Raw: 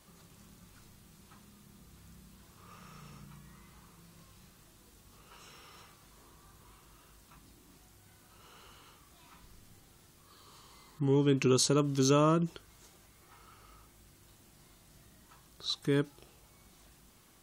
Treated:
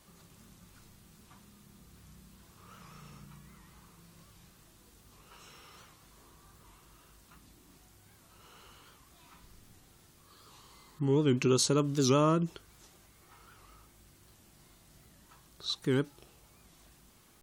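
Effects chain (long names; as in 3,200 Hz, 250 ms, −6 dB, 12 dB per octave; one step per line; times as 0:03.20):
wow of a warped record 78 rpm, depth 160 cents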